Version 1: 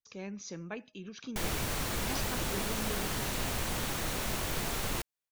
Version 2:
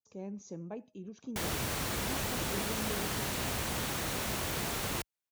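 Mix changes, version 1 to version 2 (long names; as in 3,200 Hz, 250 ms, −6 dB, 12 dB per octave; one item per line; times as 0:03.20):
speech: add flat-topped bell 2,600 Hz −15.5 dB 2.5 octaves
master: add high-pass filter 56 Hz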